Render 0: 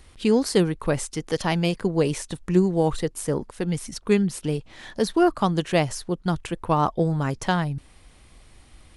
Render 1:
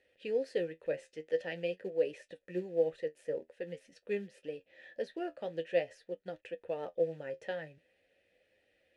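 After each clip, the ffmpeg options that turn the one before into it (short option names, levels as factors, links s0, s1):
-filter_complex "[0:a]flanger=delay=9.6:depth=3.8:regen=50:speed=0.47:shape=triangular,acrusher=bits=7:mode=log:mix=0:aa=0.000001,asplit=3[s0][s1][s2];[s0]bandpass=f=530:t=q:w=8,volume=1[s3];[s1]bandpass=f=1840:t=q:w=8,volume=0.501[s4];[s2]bandpass=f=2480:t=q:w=8,volume=0.355[s5];[s3][s4][s5]amix=inputs=3:normalize=0,volume=1.19"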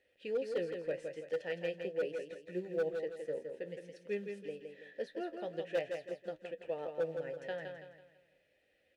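-af "volume=18.8,asoftclip=hard,volume=0.0531,aecho=1:1:165|330|495|660|825:0.501|0.195|0.0762|0.0297|0.0116,volume=0.75"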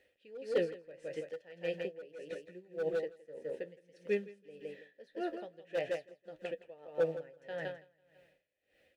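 -af "aeval=exprs='val(0)*pow(10,-21*(0.5-0.5*cos(2*PI*1.7*n/s))/20)':c=same,volume=1.88"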